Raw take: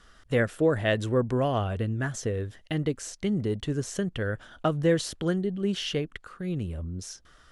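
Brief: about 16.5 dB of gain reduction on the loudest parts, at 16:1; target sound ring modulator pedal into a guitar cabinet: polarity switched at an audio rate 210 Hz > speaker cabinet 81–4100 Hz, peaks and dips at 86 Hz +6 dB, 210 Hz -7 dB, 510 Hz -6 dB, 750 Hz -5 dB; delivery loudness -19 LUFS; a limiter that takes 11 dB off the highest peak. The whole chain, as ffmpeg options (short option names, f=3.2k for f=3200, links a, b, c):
-af "acompressor=threshold=-35dB:ratio=16,alimiter=level_in=10dB:limit=-24dB:level=0:latency=1,volume=-10dB,aeval=exprs='val(0)*sgn(sin(2*PI*210*n/s))':c=same,highpass=81,equalizer=f=86:t=q:w=4:g=6,equalizer=f=210:t=q:w=4:g=-7,equalizer=f=510:t=q:w=4:g=-6,equalizer=f=750:t=q:w=4:g=-5,lowpass=f=4.1k:w=0.5412,lowpass=f=4.1k:w=1.3066,volume=26dB"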